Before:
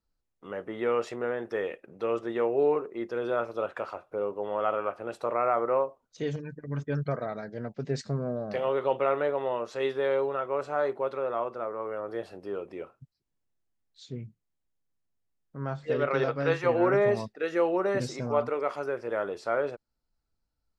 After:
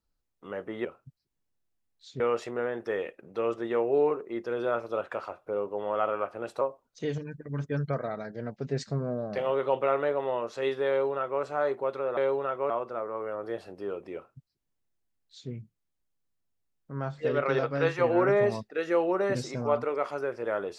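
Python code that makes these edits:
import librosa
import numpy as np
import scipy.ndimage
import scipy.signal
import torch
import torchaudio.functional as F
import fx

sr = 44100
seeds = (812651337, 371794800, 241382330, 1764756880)

y = fx.edit(x, sr, fx.cut(start_s=5.26, length_s=0.53),
    fx.duplicate(start_s=10.07, length_s=0.53, to_s=11.35),
    fx.duplicate(start_s=12.8, length_s=1.35, to_s=0.85), tone=tone)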